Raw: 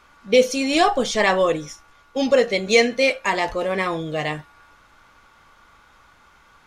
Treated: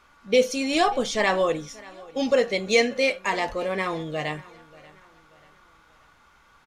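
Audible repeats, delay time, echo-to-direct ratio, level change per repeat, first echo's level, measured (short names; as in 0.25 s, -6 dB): 2, 0.586 s, -21.0 dB, -7.5 dB, -22.0 dB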